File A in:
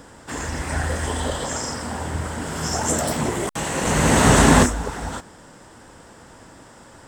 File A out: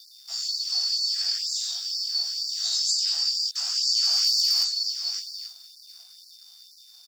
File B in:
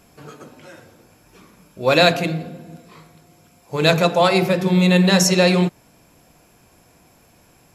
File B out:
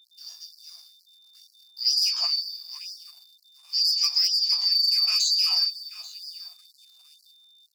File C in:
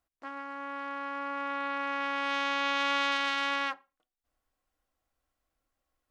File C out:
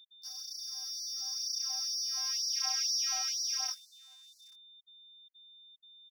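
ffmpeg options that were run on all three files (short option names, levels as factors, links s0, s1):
-filter_complex "[0:a]afftfilt=real='real(if(lt(b,272),68*(eq(floor(b/68),0)*1+eq(floor(b/68),1)*2+eq(floor(b/68),2)*3+eq(floor(b/68),3)*0)+mod(b,68),b),0)':imag='imag(if(lt(b,272),68*(eq(floor(b/68),0)*1+eq(floor(b/68),1)*2+eq(floor(b/68),2)*3+eq(floor(b/68),3)*0)+mod(b,68),b),0)':win_size=2048:overlap=0.75,flanger=delay=16:depth=3.7:speed=0.47,asplit=2[s0][s1];[s1]adelay=834,lowpass=f=3800:p=1,volume=0.112,asplit=2[s2][s3];[s3]adelay=834,lowpass=f=3800:p=1,volume=0.3,asplit=2[s4][s5];[s5]adelay=834,lowpass=f=3800:p=1,volume=0.3[s6];[s0][s2][s4][s6]amix=inputs=4:normalize=0,aresample=16000,aresample=44100,bandreject=f=71.43:t=h:w=4,bandreject=f=142.86:t=h:w=4,bandreject=f=214.29:t=h:w=4,bandreject=f=285.72:t=h:w=4,bandreject=f=357.15:t=h:w=4,bandreject=f=428.58:t=h:w=4,bandreject=f=500.01:t=h:w=4,bandreject=f=571.44:t=h:w=4,bandreject=f=642.87:t=h:w=4,bandreject=f=714.3:t=h:w=4,bandreject=f=785.73:t=h:w=4,bandreject=f=857.16:t=h:w=4,bandreject=f=928.59:t=h:w=4,bandreject=f=1000.02:t=h:w=4,bandreject=f=1071.45:t=h:w=4,bandreject=f=1142.88:t=h:w=4,bandreject=f=1214.31:t=h:w=4,bandreject=f=1285.74:t=h:w=4,bandreject=f=1357.17:t=h:w=4,bandreject=f=1428.6:t=h:w=4,bandreject=f=1500.03:t=h:w=4,bandreject=f=1571.46:t=h:w=4,bandreject=f=1642.89:t=h:w=4,bandreject=f=1714.32:t=h:w=4,bandreject=f=1785.75:t=h:w=4,acrossover=split=140[s7][s8];[s8]acontrast=82[s9];[s7][s9]amix=inputs=2:normalize=0,aeval=exprs='sgn(val(0))*max(abs(val(0))-0.00562,0)':c=same,acompressor=threshold=0.2:ratio=16,equalizer=f=125:t=o:w=1:g=5,equalizer=f=250:t=o:w=1:g=-7,equalizer=f=1000:t=o:w=1:g=-9,equalizer=f=2000:t=o:w=1:g=-11,aeval=exprs='val(0)+0.00282*sin(2*PI*3600*n/s)':c=same,adynamicequalizer=threshold=0.00141:dfrequency=120:dqfactor=7.3:tfrequency=120:tqfactor=7.3:attack=5:release=100:ratio=0.375:range=3.5:mode=cutabove:tftype=bell,afftfilt=real='re*gte(b*sr/1024,620*pow(4000/620,0.5+0.5*sin(2*PI*2.1*pts/sr)))':imag='im*gte(b*sr/1024,620*pow(4000/620,0.5+0.5*sin(2*PI*2.1*pts/sr)))':win_size=1024:overlap=0.75,volume=0.708"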